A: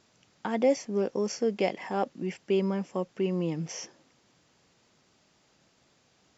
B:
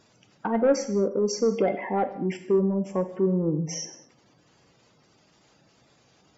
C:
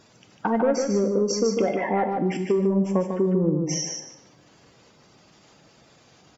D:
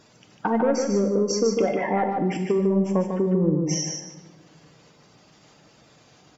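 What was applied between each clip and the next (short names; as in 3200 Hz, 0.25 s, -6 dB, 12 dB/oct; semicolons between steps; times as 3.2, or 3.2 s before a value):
spectral gate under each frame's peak -15 dB strong; soft clip -20 dBFS, distortion -17 dB; non-linear reverb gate 0.26 s falling, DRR 7.5 dB; gain +5.5 dB
compressor, threshold -24 dBFS, peak gain reduction 8.5 dB; feedback echo 0.149 s, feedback 17%, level -5.5 dB; gain +5 dB
shoebox room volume 1300 m³, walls mixed, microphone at 0.43 m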